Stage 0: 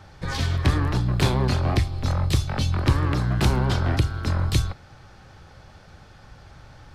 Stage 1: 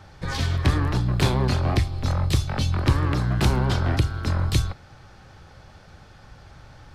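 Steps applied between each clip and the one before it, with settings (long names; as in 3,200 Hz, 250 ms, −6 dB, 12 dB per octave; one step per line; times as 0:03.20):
no processing that can be heard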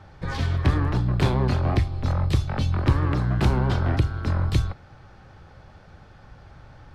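high-shelf EQ 3,700 Hz −11.5 dB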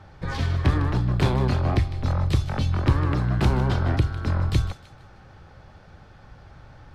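delay with a high-pass on its return 154 ms, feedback 36%, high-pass 1,900 Hz, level −12 dB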